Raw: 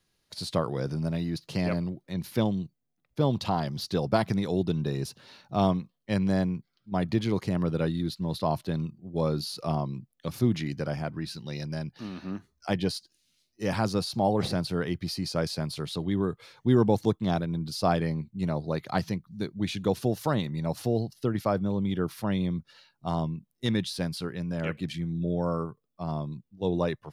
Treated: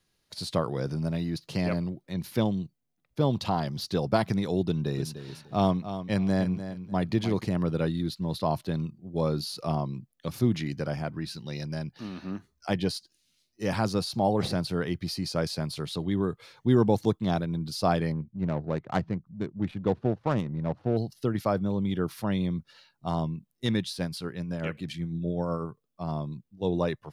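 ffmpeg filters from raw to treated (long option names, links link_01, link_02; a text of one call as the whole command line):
ffmpeg -i in.wav -filter_complex "[0:a]asettb=1/sr,asplit=3[link_01][link_02][link_03];[link_01]atrim=end=4.674[link_04];[link_02]atrim=start=4.67:end=7.45,asetpts=PTS-STARTPTS,afade=type=in:duration=0.004:curve=qsin,afade=type=out:start_time=2.776:duration=0.004:curve=qsin,aecho=1:1:298|596|894:0.282|0.0648|0.0149,atrim=end_sample=122598[link_05];[link_03]atrim=start=7.446[link_06];[link_04][link_05]acrossfade=duration=0.004:curve1=hsin:curve2=qsin[link_07];[link_07][link_06]acrossfade=duration=0.004:curve1=qsin:curve2=hsin,asettb=1/sr,asplit=3[link_08][link_09][link_10];[link_08]atrim=end=18.124[link_11];[link_09]atrim=start=18.12:end=20.97,asetpts=PTS-STARTPTS,afade=type=in:duration=0.004:curve=qsin,afade=type=out:start_time=2.846:duration=0.004:curve=qsin,adynamicsmooth=sensitivity=2.5:basefreq=720[link_12];[link_10]atrim=start=20.966[link_13];[link_11][link_12]acrossfade=duration=0.004:curve1=hsin:curve2=qsin[link_14];[link_14][link_13]acrossfade=duration=0.004:curve1=qsin:curve2=hsin,asettb=1/sr,asplit=3[link_15][link_16][link_17];[link_15]atrim=end=23.784[link_18];[link_16]atrim=start=23.78:end=25.65,asetpts=PTS-STARTPTS,afade=type=in:duration=0.004:curve=qsin,afade=type=out:start_time=1.866:duration=0.004:curve=qsin,tremolo=f=8:d=0.34[link_19];[link_17]atrim=start=25.646[link_20];[link_18][link_19]acrossfade=duration=0.004:curve1=hsin:curve2=qsin[link_21];[link_21][link_20]acrossfade=duration=0.004:curve1=qsin:curve2=hsin" out.wav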